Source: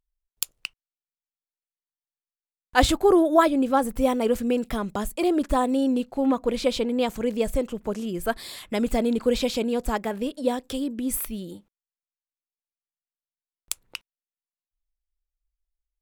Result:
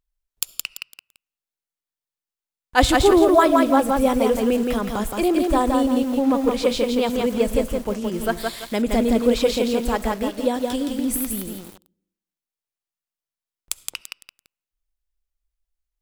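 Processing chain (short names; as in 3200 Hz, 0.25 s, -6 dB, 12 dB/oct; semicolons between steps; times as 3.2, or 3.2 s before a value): on a send at -21 dB: low shelf 230 Hz +7 dB + reverb RT60 0.85 s, pre-delay 25 ms; on the sum: lo-fi delay 0.169 s, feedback 35%, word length 7-bit, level -3 dB; gain +2.5 dB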